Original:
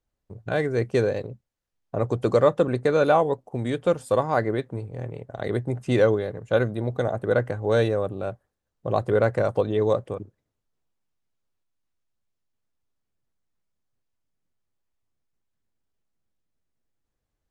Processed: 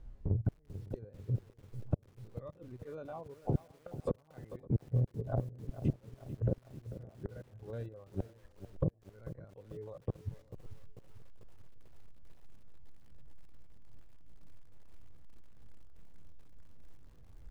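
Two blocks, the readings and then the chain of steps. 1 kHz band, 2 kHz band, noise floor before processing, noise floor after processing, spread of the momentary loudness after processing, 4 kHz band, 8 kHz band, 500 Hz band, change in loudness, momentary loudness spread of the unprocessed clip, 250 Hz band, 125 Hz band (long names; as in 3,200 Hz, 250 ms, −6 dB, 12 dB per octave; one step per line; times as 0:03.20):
−24.0 dB, below −30 dB, −81 dBFS, −64 dBFS, 16 LU, below −25 dB, can't be measured, −22.5 dB, −16.0 dB, 14 LU, −13.5 dB, −7.0 dB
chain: spectrum averaged block by block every 50 ms
gate with flip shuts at −23 dBFS, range −42 dB
reverb reduction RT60 1.8 s
treble cut that deepens with the level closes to 500 Hz, closed at −39 dBFS
RIAA equalisation playback
downward compressor 4 to 1, threshold −50 dBFS, peak gain reduction 23.5 dB
on a send: feedback echo with a low-pass in the loop 559 ms, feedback 37%, low-pass 1,900 Hz, level −22 dB
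on the sum: feedback echo at a low word length 443 ms, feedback 55%, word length 12 bits, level −12.5 dB
level +17 dB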